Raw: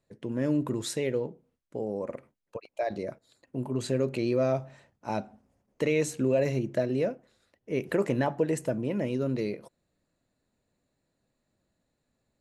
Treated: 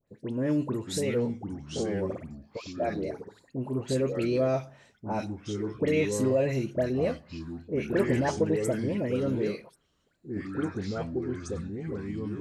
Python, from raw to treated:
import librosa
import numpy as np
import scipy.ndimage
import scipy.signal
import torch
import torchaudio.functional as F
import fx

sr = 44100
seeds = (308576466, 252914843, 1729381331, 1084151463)

y = fx.dispersion(x, sr, late='highs', ms=79.0, hz=1700.0)
y = fx.echo_pitch(y, sr, ms=563, semitones=-4, count=2, db_per_echo=-6.0)